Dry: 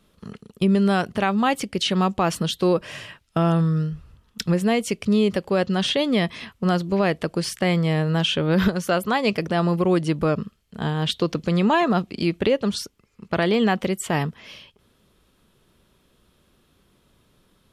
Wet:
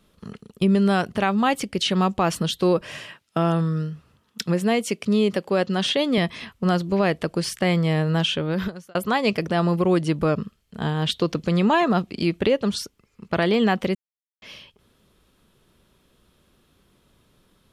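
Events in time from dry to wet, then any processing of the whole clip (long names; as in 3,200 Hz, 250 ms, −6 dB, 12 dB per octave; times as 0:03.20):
0:02.97–0:06.18: high-pass filter 160 Hz
0:08.20–0:08.95: fade out
0:13.95–0:14.42: silence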